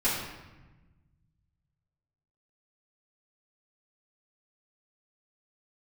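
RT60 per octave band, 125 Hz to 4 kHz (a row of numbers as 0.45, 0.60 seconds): 2.6, 1.8, 1.1, 1.1, 1.1, 0.80 seconds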